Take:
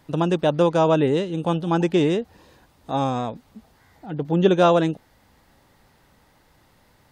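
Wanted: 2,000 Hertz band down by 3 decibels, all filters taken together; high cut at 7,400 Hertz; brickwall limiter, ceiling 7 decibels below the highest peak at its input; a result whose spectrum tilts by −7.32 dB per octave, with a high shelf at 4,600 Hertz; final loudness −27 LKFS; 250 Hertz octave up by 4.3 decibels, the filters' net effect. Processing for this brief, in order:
low-pass filter 7,400 Hz
parametric band 250 Hz +7 dB
parametric band 2,000 Hz −6 dB
high-shelf EQ 4,600 Hz +6.5 dB
level −7 dB
brickwall limiter −15.5 dBFS

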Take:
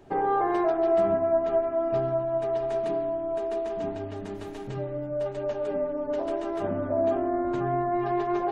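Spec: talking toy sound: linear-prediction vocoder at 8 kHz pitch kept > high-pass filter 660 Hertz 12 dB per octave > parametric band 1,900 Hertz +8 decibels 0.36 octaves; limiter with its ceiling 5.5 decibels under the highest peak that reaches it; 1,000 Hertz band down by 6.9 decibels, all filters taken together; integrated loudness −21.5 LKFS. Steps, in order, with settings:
parametric band 1,000 Hz −8.5 dB
brickwall limiter −22 dBFS
linear-prediction vocoder at 8 kHz pitch kept
high-pass filter 660 Hz 12 dB per octave
parametric band 1,900 Hz +8 dB 0.36 octaves
level +15 dB

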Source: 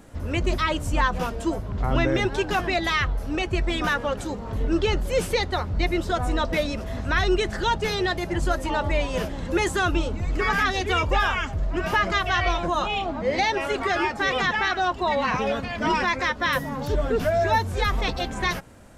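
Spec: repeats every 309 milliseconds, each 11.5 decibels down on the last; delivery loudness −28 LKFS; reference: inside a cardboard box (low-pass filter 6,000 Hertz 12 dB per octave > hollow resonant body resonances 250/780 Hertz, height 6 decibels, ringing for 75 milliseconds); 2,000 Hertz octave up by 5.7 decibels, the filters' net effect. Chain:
low-pass filter 6,000 Hz 12 dB per octave
parametric band 2,000 Hz +7 dB
repeating echo 309 ms, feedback 27%, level −11.5 dB
hollow resonant body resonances 250/780 Hz, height 6 dB, ringing for 75 ms
level −7 dB

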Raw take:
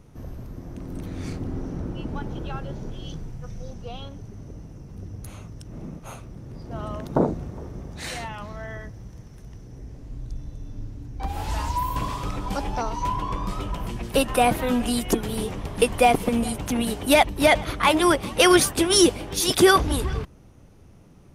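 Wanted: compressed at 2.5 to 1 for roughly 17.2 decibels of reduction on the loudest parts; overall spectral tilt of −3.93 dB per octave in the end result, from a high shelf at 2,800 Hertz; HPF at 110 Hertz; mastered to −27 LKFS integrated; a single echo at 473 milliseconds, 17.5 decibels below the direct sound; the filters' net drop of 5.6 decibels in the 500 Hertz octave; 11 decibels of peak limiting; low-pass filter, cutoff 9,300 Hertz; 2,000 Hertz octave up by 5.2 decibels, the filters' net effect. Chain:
high-pass filter 110 Hz
low-pass filter 9,300 Hz
parametric band 500 Hz −8.5 dB
parametric band 2,000 Hz +5 dB
high-shelf EQ 2,800 Hz +5 dB
downward compressor 2.5 to 1, threshold −38 dBFS
brickwall limiter −27.5 dBFS
single-tap delay 473 ms −17.5 dB
level +12.5 dB

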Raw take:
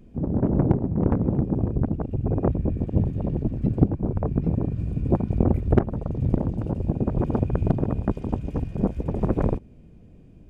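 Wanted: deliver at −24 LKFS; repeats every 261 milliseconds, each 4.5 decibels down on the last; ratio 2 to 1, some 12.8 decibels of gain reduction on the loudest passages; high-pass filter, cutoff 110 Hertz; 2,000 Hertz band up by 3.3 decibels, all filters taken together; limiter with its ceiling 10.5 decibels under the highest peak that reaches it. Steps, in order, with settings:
high-pass filter 110 Hz
parametric band 2,000 Hz +4.5 dB
downward compressor 2 to 1, threshold −38 dBFS
brickwall limiter −26 dBFS
repeating echo 261 ms, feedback 60%, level −4.5 dB
level +12.5 dB

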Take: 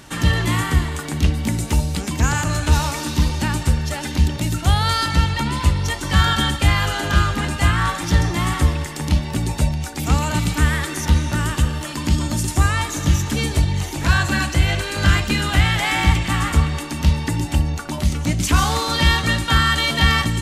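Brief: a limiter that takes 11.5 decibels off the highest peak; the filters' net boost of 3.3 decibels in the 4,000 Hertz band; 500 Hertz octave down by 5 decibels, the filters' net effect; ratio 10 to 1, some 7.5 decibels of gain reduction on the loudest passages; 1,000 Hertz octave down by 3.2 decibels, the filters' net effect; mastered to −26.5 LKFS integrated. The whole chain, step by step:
parametric band 500 Hz −6 dB
parametric band 1,000 Hz −3 dB
parametric band 4,000 Hz +4.5 dB
downward compressor 10 to 1, threshold −17 dBFS
level −1 dB
brickwall limiter −17.5 dBFS

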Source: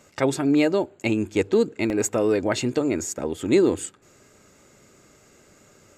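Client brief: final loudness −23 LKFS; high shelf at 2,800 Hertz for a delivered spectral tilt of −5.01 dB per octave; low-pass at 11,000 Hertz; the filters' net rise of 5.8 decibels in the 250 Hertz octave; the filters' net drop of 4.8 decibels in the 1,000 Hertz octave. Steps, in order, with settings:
low-pass filter 11,000 Hz
parametric band 250 Hz +8 dB
parametric band 1,000 Hz −8 dB
high-shelf EQ 2,800 Hz +5.5 dB
level −4 dB

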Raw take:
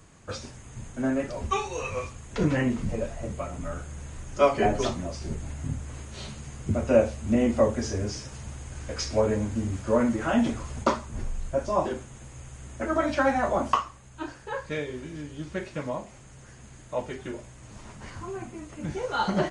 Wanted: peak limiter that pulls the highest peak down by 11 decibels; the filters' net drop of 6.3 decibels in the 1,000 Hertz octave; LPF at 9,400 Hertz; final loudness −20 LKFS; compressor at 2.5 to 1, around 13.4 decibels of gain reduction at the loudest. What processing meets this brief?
low-pass filter 9,400 Hz
parametric band 1,000 Hz −8.5 dB
downward compressor 2.5 to 1, threshold −38 dBFS
level +22.5 dB
brickwall limiter −9.5 dBFS

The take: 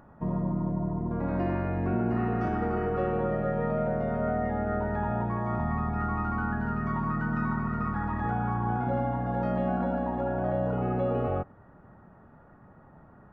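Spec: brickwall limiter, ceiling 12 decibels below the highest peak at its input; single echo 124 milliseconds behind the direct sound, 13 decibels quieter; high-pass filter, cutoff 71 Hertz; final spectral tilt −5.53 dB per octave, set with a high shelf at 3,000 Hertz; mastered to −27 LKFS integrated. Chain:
high-pass filter 71 Hz
high-shelf EQ 3,000 Hz −8.5 dB
brickwall limiter −29 dBFS
single-tap delay 124 ms −13 dB
level +9.5 dB

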